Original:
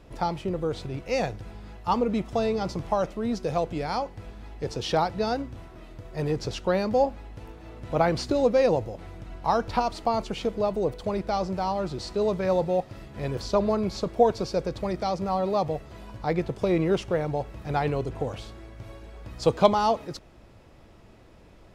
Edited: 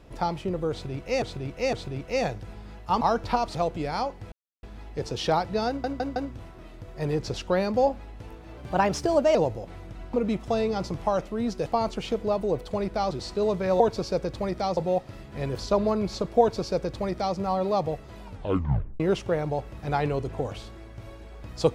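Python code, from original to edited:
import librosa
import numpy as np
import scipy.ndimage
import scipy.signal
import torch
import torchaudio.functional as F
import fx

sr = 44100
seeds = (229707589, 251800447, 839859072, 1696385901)

y = fx.edit(x, sr, fx.repeat(start_s=0.71, length_s=0.51, count=3),
    fx.swap(start_s=1.99, length_s=1.52, other_s=9.45, other_length_s=0.54),
    fx.insert_silence(at_s=4.28, length_s=0.31),
    fx.stutter(start_s=5.33, slice_s=0.16, count=4),
    fx.speed_span(start_s=7.74, length_s=0.92, speed=1.18),
    fx.cut(start_s=11.44, length_s=0.46),
    fx.duplicate(start_s=14.22, length_s=0.97, to_s=12.59),
    fx.tape_stop(start_s=16.06, length_s=0.76), tone=tone)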